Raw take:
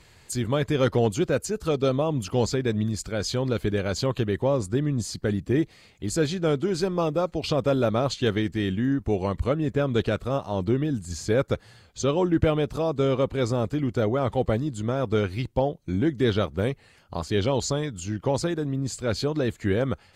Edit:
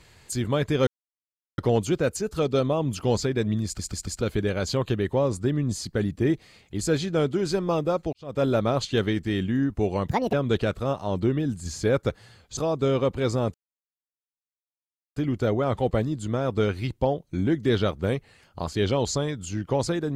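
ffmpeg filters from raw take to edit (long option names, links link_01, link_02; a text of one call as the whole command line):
ffmpeg -i in.wav -filter_complex "[0:a]asplit=11[link_01][link_02][link_03][link_04][link_05][link_06][link_07][link_08][link_09][link_10][link_11];[link_01]atrim=end=0.87,asetpts=PTS-STARTPTS,afade=type=out:start_time=0.866:duration=0.004:curve=hsin,apad=pad_dur=0.71[link_12];[link_02]atrim=start=0.87:end=3.082,asetpts=PTS-STARTPTS,afade=type=in:duration=0.004:curve=hsin[link_13];[link_03]atrim=start=2.938:end=3.082[link_14];[link_04]atrim=start=2.938:end=3.082[link_15];[link_05]atrim=start=2.938:end=3.082[link_16];[link_06]atrim=start=3.498:end=7.42,asetpts=PTS-STARTPTS,afade=type=out:start_time=3.918:duration=0.004:curve=hsin[link_17];[link_07]atrim=start=7.42:end=9.374,asetpts=PTS-STARTPTS,afade=type=in:duration=0.3:curve=qua[link_18];[link_08]atrim=start=9.37:end=9.78,asetpts=PTS-STARTPTS,asetrate=71883,aresample=44100[link_19];[link_09]atrim=start=9.776:end=12.022[link_20];[link_10]atrim=start=12.738:end=13.71,asetpts=PTS-STARTPTS,afade=type=out:start_time=0.968:duration=0.004:curve=hsin,apad=pad_dur=1.62[link_21];[link_11]atrim=start=13.71,asetpts=PTS-STARTPTS,afade=type=in:duration=0.004:curve=hsin[link_22];[link_12][link_13]concat=n=2:v=0:a=1[link_23];[link_23][link_14]acrossfade=duration=0.004:curve1=hsin:curve2=hsin[link_24];[link_24][link_15]acrossfade=duration=0.004:curve1=hsin:curve2=hsin[link_25];[link_25][link_16]acrossfade=duration=0.004:curve1=hsin:curve2=hsin[link_26];[link_17][link_18]concat=n=2:v=0:a=1[link_27];[link_26][link_27]acrossfade=duration=0.004:curve1=hsin:curve2=hsin[link_28];[link_28][link_19]acrossfade=duration=0.004:curve1=hsin:curve2=hsin[link_29];[link_29][link_20]acrossfade=duration=0.004:curve1=hsin:curve2=hsin[link_30];[link_21][link_22]concat=n=2:v=0:a=1[link_31];[link_30][link_31]acrossfade=duration=0.004:curve1=hsin:curve2=hsin" out.wav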